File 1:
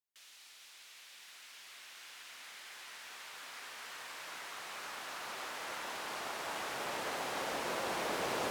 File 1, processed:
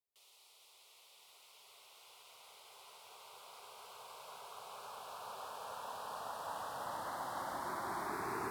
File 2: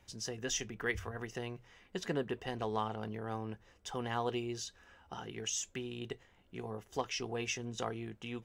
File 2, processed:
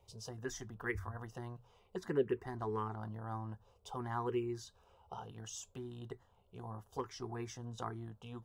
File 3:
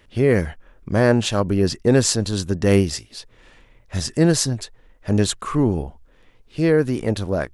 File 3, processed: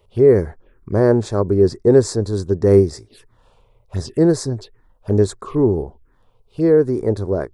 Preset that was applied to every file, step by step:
fifteen-band EQ 100 Hz +6 dB, 400 Hz +12 dB, 1000 Hz +4 dB, 6300 Hz -6 dB; envelope phaser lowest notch 280 Hz, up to 2900 Hz, full sweep at -15.5 dBFS; gain -3.5 dB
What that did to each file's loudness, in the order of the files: -4.0, -3.0, +3.0 LU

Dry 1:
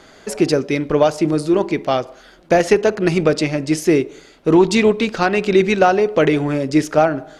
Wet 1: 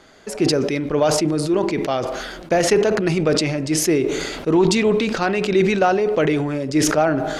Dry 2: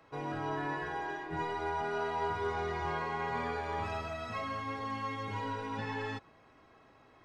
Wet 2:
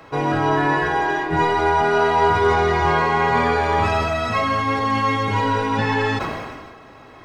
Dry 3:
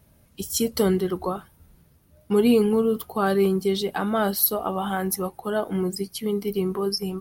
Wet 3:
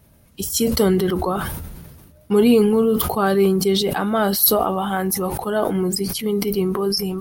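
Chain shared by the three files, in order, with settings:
sustainer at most 35 dB/s; match loudness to -19 LUFS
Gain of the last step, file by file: -4.5, +17.0, +3.5 dB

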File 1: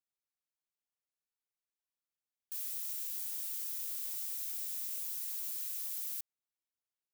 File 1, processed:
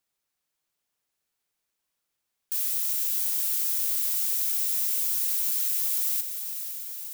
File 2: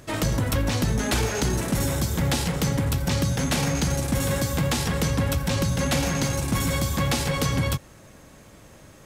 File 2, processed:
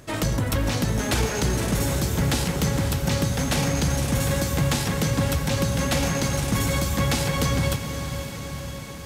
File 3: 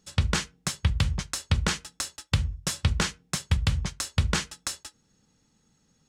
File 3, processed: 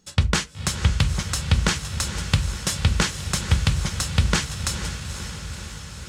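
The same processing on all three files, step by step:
diffused feedback echo 0.499 s, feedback 69%, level -9 dB; match loudness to -24 LUFS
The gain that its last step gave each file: +12.0, 0.0, +4.5 dB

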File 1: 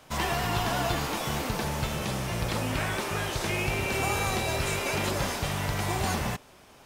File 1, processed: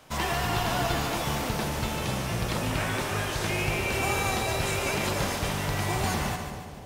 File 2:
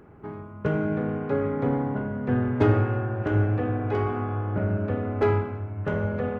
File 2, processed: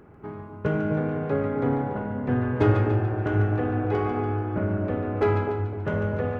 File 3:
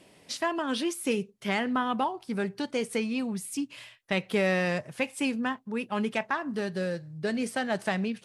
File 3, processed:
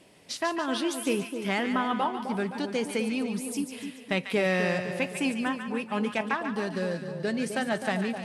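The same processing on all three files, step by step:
split-band echo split 950 Hz, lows 0.257 s, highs 0.144 s, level -7.5 dB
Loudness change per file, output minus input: +1.0, +0.5, +1.0 LU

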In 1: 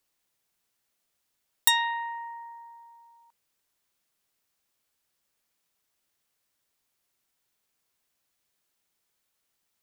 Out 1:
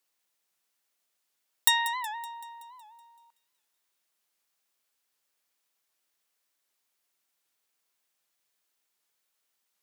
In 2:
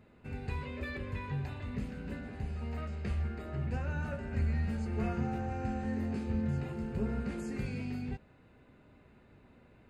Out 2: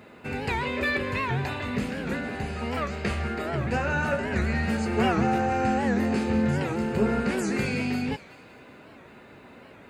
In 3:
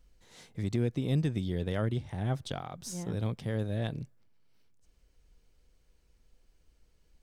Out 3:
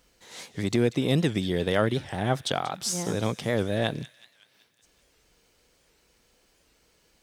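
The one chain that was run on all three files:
HPF 410 Hz 6 dB/oct; on a send: thin delay 0.188 s, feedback 56%, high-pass 2100 Hz, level -15 dB; on the sum: record warp 78 rpm, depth 160 cents; match loudness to -27 LUFS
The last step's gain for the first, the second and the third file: -1.0, +16.5, +12.5 dB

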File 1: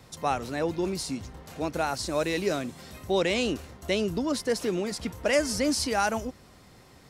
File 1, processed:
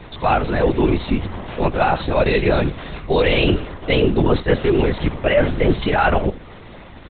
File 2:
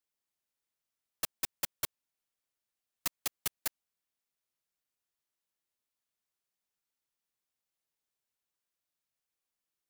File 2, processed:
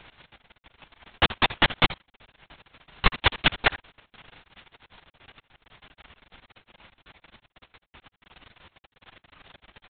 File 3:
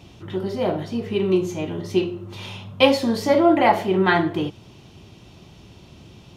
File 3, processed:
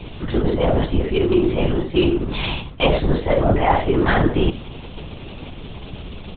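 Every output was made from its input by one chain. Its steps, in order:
reverse; compressor 6:1, threshold -27 dBFS; reverse; companded quantiser 6-bit; crackle 44/s -47 dBFS; echo 74 ms -16.5 dB; LPC vocoder at 8 kHz whisper; normalise peaks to -3 dBFS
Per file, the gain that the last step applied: +15.0, +24.0, +12.5 dB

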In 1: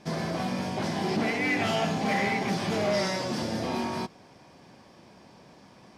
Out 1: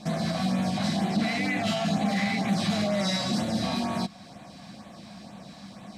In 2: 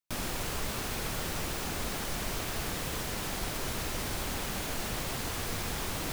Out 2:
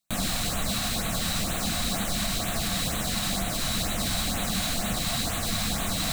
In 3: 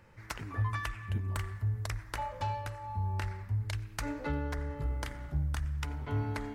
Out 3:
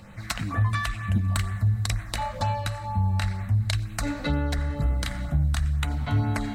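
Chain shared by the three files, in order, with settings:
small resonant body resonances 700/1100/3900 Hz, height 8 dB, ringing for 40 ms; in parallel at -1 dB: compressor, threshold -40 dBFS; on the sum: LFO notch sine 2.1 Hz 350–5300 Hz; limiter -21.5 dBFS; thirty-one-band EQ 200 Hz +9 dB, 400 Hz -12 dB, 1000 Hz -7 dB, 4000 Hz +8 dB, 8000 Hz +6 dB; match loudness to -27 LUFS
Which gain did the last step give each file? +1.0, +3.5, +7.0 dB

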